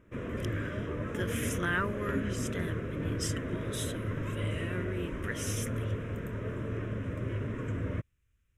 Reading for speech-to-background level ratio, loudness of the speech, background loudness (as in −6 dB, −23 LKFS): −3.0 dB, −38.5 LKFS, −35.5 LKFS